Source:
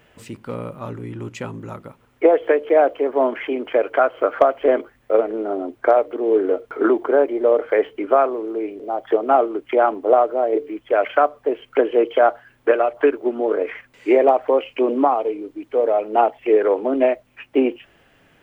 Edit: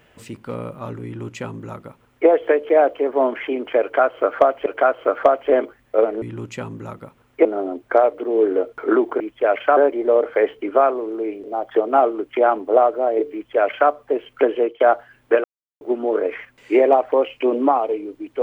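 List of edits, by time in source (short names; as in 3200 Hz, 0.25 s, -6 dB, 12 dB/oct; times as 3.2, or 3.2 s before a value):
1.05–2.28 copy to 5.38
3.82–4.66 loop, 2 plays
10.69–11.26 copy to 7.13
11.91–12.16 fade out, to -19.5 dB
12.8–13.17 mute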